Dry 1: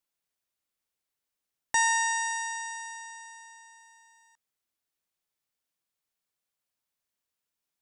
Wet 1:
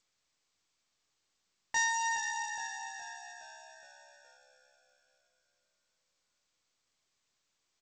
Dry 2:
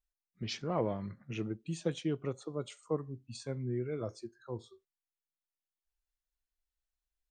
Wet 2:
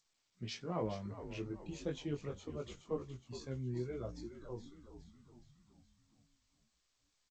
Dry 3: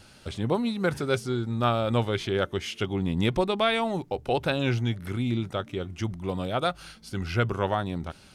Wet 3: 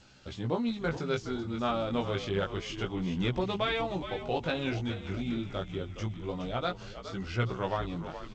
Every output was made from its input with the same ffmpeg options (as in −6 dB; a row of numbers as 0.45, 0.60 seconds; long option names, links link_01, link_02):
-filter_complex "[0:a]flanger=delay=15.5:depth=5.7:speed=0.28,asplit=7[link_01][link_02][link_03][link_04][link_05][link_06][link_07];[link_02]adelay=417,afreqshift=-67,volume=-11dB[link_08];[link_03]adelay=834,afreqshift=-134,volume=-16.5dB[link_09];[link_04]adelay=1251,afreqshift=-201,volume=-22dB[link_10];[link_05]adelay=1668,afreqshift=-268,volume=-27.5dB[link_11];[link_06]adelay=2085,afreqshift=-335,volume=-33.1dB[link_12];[link_07]adelay=2502,afreqshift=-402,volume=-38.6dB[link_13];[link_01][link_08][link_09][link_10][link_11][link_12][link_13]amix=inputs=7:normalize=0,volume=-2.5dB" -ar 16000 -c:a g722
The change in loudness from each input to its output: −6.0, −5.0, −5.5 LU